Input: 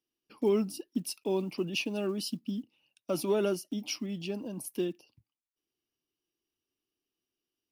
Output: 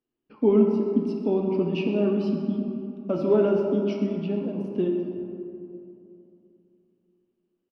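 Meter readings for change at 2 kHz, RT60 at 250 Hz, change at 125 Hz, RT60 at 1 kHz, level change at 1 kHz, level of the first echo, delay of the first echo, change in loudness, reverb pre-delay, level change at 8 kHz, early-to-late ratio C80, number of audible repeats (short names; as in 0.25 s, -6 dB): -1.5 dB, 3.2 s, +9.5 dB, 2.8 s, +5.5 dB, -13.0 dB, 0.128 s, +8.0 dB, 4 ms, under -20 dB, 3.5 dB, 1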